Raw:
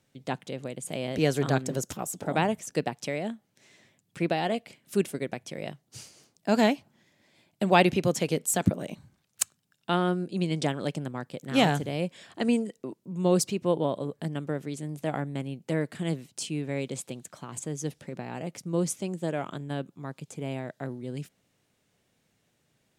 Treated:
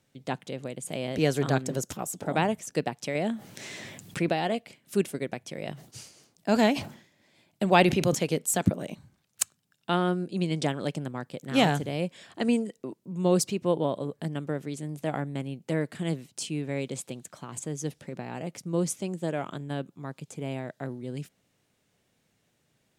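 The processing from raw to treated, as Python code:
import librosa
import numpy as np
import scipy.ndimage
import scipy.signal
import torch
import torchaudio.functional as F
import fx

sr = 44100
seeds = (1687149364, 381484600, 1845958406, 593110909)

y = fx.env_flatten(x, sr, amount_pct=50, at=(3.15, 4.33))
y = fx.sustainer(y, sr, db_per_s=110.0, at=(5.64, 8.15))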